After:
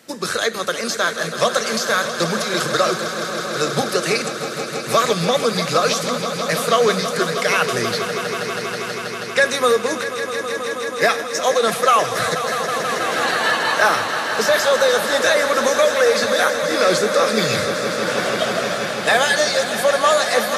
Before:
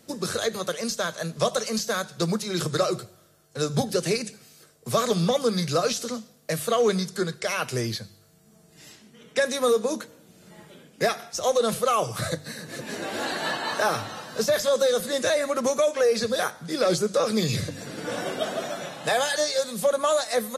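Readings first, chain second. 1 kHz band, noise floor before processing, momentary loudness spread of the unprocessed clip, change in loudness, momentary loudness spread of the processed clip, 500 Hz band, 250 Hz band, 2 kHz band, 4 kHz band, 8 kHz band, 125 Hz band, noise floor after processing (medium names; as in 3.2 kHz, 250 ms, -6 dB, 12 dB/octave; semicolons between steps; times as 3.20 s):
+10.0 dB, -56 dBFS, 10 LU, +7.5 dB, 8 LU, +6.0 dB, +3.5 dB, +13.0 dB, +9.0 dB, +7.0 dB, +1.0 dB, -28 dBFS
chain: high-pass 220 Hz 6 dB/octave; peaking EQ 1.8 kHz +7.5 dB 1.9 oct; on a send: echo with a slow build-up 161 ms, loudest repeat 5, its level -12 dB; on the sum: trim +4 dB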